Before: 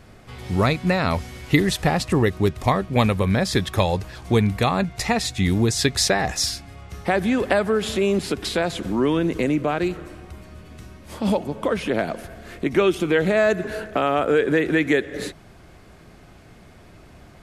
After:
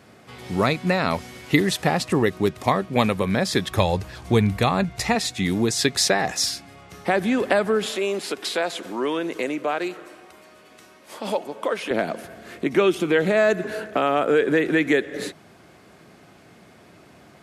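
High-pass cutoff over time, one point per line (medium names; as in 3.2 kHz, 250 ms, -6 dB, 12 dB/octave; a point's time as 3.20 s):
160 Hz
from 3.71 s 61 Hz
from 5.15 s 170 Hz
from 7.86 s 420 Hz
from 11.91 s 160 Hz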